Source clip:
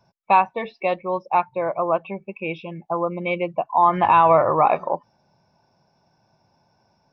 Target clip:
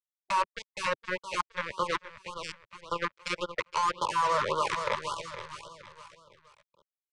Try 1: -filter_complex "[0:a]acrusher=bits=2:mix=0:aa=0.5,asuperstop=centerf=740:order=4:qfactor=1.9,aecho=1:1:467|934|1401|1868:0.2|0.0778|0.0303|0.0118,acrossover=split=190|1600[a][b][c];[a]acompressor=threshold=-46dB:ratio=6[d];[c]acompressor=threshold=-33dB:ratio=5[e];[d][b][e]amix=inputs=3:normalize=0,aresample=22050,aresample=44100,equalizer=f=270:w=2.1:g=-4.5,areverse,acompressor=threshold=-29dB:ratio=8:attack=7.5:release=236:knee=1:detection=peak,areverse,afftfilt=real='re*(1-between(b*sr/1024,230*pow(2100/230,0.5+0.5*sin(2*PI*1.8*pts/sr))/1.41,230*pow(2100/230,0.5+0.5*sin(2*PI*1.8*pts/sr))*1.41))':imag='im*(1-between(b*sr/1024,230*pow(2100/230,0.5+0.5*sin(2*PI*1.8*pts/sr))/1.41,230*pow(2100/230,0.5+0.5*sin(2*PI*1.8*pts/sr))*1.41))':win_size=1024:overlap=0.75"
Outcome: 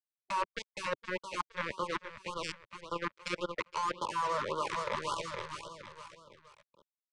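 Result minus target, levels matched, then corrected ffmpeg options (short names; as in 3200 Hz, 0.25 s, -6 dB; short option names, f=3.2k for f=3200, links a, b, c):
compressor: peak gain reduction +6.5 dB; 250 Hz band +5.0 dB
-filter_complex "[0:a]acrusher=bits=2:mix=0:aa=0.5,asuperstop=centerf=740:order=4:qfactor=1.9,aecho=1:1:467|934|1401|1868:0.2|0.0778|0.0303|0.0118,acrossover=split=190|1600[a][b][c];[a]acompressor=threshold=-46dB:ratio=6[d];[c]acompressor=threshold=-33dB:ratio=5[e];[d][b][e]amix=inputs=3:normalize=0,aresample=22050,aresample=44100,equalizer=f=270:w=2.1:g=-14.5,areverse,acompressor=threshold=-22dB:ratio=8:attack=7.5:release=236:knee=1:detection=peak,areverse,afftfilt=real='re*(1-between(b*sr/1024,230*pow(2100/230,0.5+0.5*sin(2*PI*1.8*pts/sr))/1.41,230*pow(2100/230,0.5+0.5*sin(2*PI*1.8*pts/sr))*1.41))':imag='im*(1-between(b*sr/1024,230*pow(2100/230,0.5+0.5*sin(2*PI*1.8*pts/sr))/1.41,230*pow(2100/230,0.5+0.5*sin(2*PI*1.8*pts/sr))*1.41))':win_size=1024:overlap=0.75"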